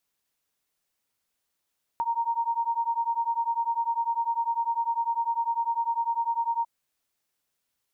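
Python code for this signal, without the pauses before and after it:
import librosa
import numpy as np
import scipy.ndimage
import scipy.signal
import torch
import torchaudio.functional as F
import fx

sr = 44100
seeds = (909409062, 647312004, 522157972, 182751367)

y = fx.two_tone_beats(sr, length_s=4.65, hz=924.0, beat_hz=10.0, level_db=-27.5)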